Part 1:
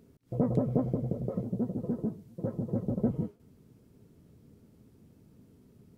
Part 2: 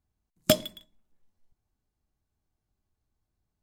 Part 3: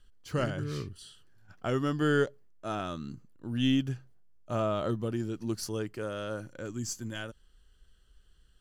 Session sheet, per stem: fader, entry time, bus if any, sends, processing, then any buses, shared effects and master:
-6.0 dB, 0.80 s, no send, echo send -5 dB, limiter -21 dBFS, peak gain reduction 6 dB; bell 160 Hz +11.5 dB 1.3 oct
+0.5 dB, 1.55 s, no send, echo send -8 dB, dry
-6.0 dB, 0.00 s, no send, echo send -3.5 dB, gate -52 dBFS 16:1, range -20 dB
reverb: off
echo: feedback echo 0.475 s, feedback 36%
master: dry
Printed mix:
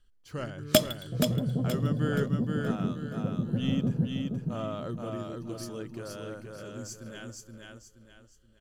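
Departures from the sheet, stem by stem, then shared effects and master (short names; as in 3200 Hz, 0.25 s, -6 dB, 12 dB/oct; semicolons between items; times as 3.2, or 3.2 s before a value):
stem 2: entry 1.55 s -> 0.25 s; stem 3: missing gate -52 dBFS 16:1, range -20 dB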